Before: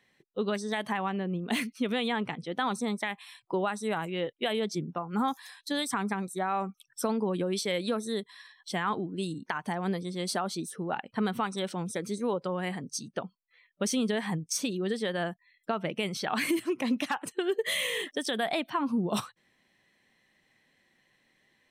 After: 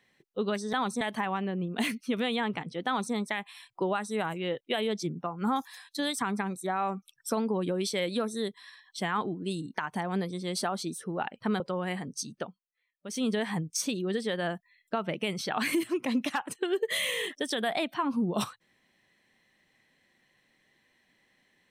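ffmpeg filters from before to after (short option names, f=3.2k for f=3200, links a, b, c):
-filter_complex "[0:a]asplit=6[a][b][c][d][e][f];[a]atrim=end=0.732[g];[b]atrim=start=2.578:end=2.862[h];[c]atrim=start=0.728:end=11.322[i];[d]atrim=start=12.358:end=13.44,asetpts=PTS-STARTPTS,afade=t=out:st=0.792:d=0.29:c=qua:silence=0.133352[j];[e]atrim=start=13.44:end=13.72,asetpts=PTS-STARTPTS,volume=-17.5dB[k];[f]atrim=start=13.72,asetpts=PTS-STARTPTS,afade=t=in:d=0.29:c=qua:silence=0.133352[l];[g][h]acrossfade=d=0.004:c1=hsin:c2=hsin[m];[m][i]acrossfade=d=0.004:c1=hsin:c2=hsin[n];[j][k][l]concat=n=3:v=0:a=1[o];[n][o]acrossfade=d=0.004:c1=hsin:c2=hsin"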